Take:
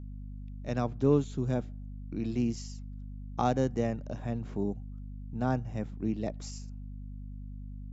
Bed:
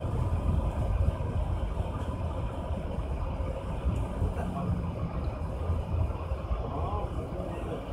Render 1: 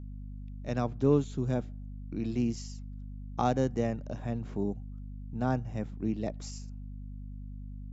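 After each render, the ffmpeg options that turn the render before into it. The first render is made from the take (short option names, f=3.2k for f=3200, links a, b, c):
-af anull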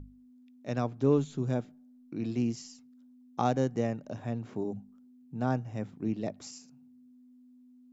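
-af "bandreject=f=50:t=h:w=6,bandreject=f=100:t=h:w=6,bandreject=f=150:t=h:w=6,bandreject=f=200:t=h:w=6"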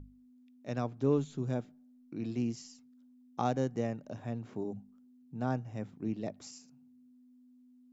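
-af "volume=-3.5dB"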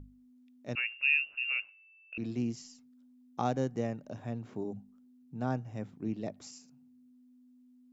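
-filter_complex "[0:a]asettb=1/sr,asplit=3[a][b][c];[a]atrim=end=0.754[d];[b]atrim=start=0.75:end=2.18,asetpts=PTS-STARTPTS,afade=t=in:d=0.004:c=qsin,afade=t=out:st=1.426:d=0.004:c=qsin,lowpass=f=2.5k:t=q:w=0.5098,lowpass=f=2.5k:t=q:w=0.6013,lowpass=f=2.5k:t=q:w=0.9,lowpass=f=2.5k:t=q:w=2.563,afreqshift=-2900[e];[c]atrim=start=2.176[f];[d][e]acrossfade=d=0.004:c1=hsin:c2=qsin[g];[g][f]acrossfade=d=0.004:c1=qsin:c2=hsin"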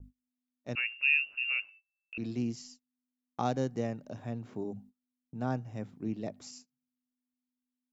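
-af "agate=range=-29dB:threshold=-53dB:ratio=16:detection=peak,adynamicequalizer=threshold=0.002:dfrequency=4500:dqfactor=2.1:tfrequency=4500:tqfactor=2.1:attack=5:release=100:ratio=0.375:range=3:mode=boostabove:tftype=bell"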